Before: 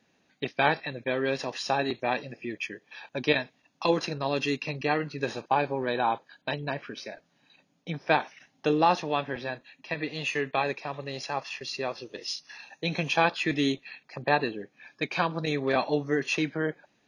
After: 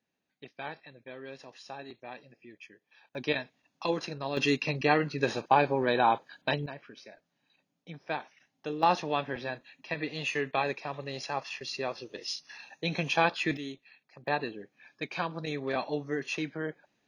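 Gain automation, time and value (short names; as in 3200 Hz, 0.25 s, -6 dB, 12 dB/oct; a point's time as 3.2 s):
-16 dB
from 3.15 s -5.5 dB
from 4.37 s +2 dB
from 6.66 s -10.5 dB
from 8.83 s -2 dB
from 13.57 s -13.5 dB
from 14.27 s -6 dB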